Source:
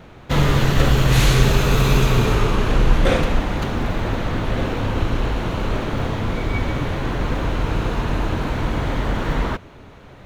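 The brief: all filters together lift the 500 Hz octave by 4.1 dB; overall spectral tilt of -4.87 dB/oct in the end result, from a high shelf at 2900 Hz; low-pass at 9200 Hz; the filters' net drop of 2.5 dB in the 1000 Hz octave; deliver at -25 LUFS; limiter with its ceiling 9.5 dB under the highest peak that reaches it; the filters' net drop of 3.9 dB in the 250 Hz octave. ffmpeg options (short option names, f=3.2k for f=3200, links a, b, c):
-af "lowpass=9.2k,equalizer=f=250:t=o:g=-8.5,equalizer=f=500:t=o:g=8.5,equalizer=f=1k:t=o:g=-6.5,highshelf=f=2.9k:g=7,volume=-2.5dB,alimiter=limit=-13dB:level=0:latency=1"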